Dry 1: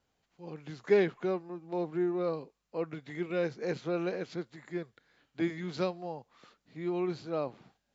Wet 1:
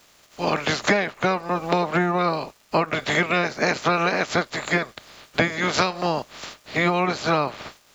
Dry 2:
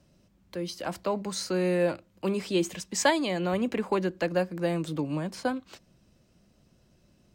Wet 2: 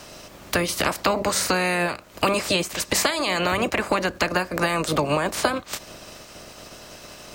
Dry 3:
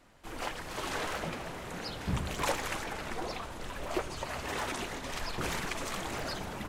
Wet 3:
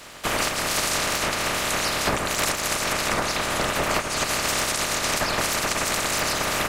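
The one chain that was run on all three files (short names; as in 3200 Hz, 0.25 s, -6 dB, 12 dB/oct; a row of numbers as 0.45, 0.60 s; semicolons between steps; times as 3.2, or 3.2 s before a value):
spectral limiter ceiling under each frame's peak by 21 dB; dynamic EQ 3300 Hz, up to -4 dB, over -48 dBFS, Q 3.1; compressor 20:1, threshold -39 dBFS; crackle 420/s -67 dBFS; small resonant body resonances 610/1200 Hz, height 6 dB; match loudness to -23 LUFS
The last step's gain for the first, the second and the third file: +21.5, +20.0, +18.5 dB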